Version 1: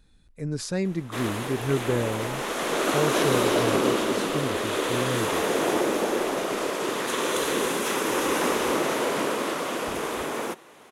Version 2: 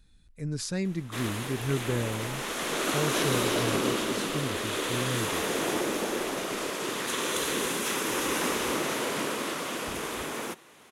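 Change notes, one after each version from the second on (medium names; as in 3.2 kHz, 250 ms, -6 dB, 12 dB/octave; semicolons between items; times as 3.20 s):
master: add peaking EQ 600 Hz -7 dB 2.6 oct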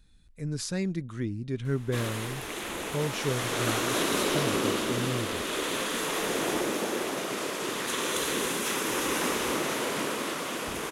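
background: entry +0.80 s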